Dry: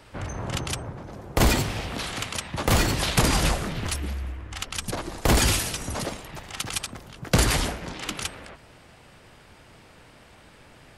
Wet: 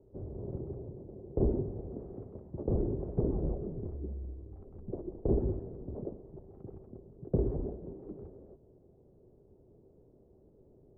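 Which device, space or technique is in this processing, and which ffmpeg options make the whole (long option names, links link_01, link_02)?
under water: -af "lowpass=frequency=540:width=0.5412,lowpass=frequency=540:width=1.3066,equalizer=frequency=390:width_type=o:width=0.34:gain=11,volume=-9dB"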